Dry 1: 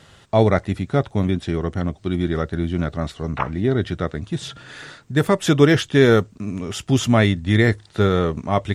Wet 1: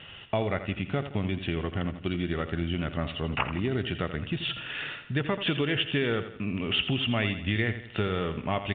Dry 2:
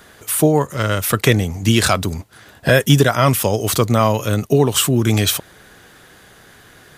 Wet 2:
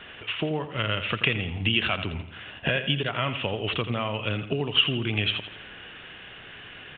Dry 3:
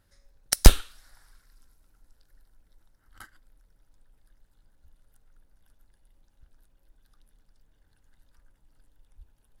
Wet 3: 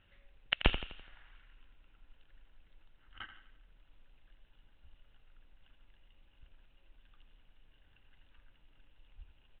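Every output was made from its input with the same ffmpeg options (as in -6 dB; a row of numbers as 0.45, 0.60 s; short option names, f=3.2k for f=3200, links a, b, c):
-af "acompressor=threshold=-24dB:ratio=5,lowpass=f=2.8k:t=q:w=6.6,aecho=1:1:84|168|252|336|420:0.282|0.127|0.0571|0.0257|0.0116,volume=-2.5dB" -ar 8000 -c:a pcm_mulaw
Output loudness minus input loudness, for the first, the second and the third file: -9.5, -10.0, -15.0 LU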